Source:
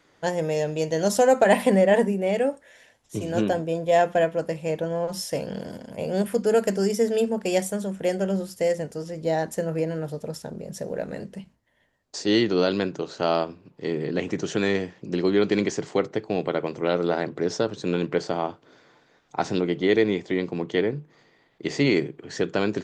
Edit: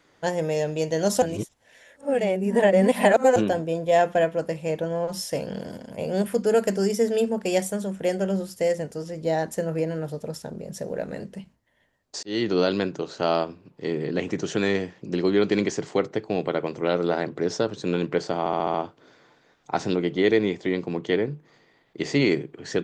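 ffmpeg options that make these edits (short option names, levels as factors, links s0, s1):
-filter_complex "[0:a]asplit=9[s0][s1][s2][s3][s4][s5][s6][s7][s8];[s0]atrim=end=1.222[s9];[s1]atrim=start=1.218:end=3.362,asetpts=PTS-STARTPTS,areverse[s10];[s2]atrim=start=3.358:end=12.23,asetpts=PTS-STARTPTS,afade=t=out:st=8.868:d=0.004:c=hsin[s11];[s3]atrim=start=12.23:end=18.462,asetpts=PTS-STARTPTS,afade=t=in:d=0.28[s12];[s4]atrim=start=18.388:end=18.462[s13];[s5]atrim=start=18.388:end=18.462[s14];[s6]atrim=start=18.388:end=18.462[s15];[s7]atrim=start=18.388:end=18.462[s16];[s8]atrim=start=18.388[s17];[s9][s10]acrossfade=d=0.004:c1=hsin:c2=hsin[s18];[s11][s12]concat=n=2:v=0:a=1[s19];[s18][s19]acrossfade=d=0.004:c1=hsin:c2=hsin[s20];[s20][s13]acrossfade=d=0.004:c1=hsin:c2=hsin[s21];[s21][s14]acrossfade=d=0.004:c1=hsin:c2=hsin[s22];[s22][s15]acrossfade=d=0.004:c1=hsin:c2=hsin[s23];[s23][s16]acrossfade=d=0.004:c1=hsin:c2=hsin[s24];[s24][s17]acrossfade=d=0.004:c1=hsin:c2=hsin"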